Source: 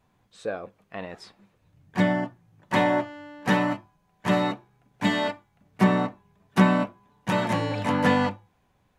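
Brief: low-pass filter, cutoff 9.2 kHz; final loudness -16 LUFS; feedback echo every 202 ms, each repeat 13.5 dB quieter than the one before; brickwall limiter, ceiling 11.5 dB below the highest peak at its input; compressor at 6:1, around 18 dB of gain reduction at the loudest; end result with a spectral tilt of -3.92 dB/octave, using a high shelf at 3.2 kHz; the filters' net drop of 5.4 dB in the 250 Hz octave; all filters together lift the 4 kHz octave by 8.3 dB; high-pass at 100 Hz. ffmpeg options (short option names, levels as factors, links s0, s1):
-af "highpass=100,lowpass=9200,equalizer=f=250:t=o:g=-7.5,highshelf=f=3200:g=4.5,equalizer=f=4000:t=o:g=7.5,acompressor=threshold=0.0141:ratio=6,alimiter=level_in=2.37:limit=0.0631:level=0:latency=1,volume=0.422,aecho=1:1:202|404:0.211|0.0444,volume=22.4"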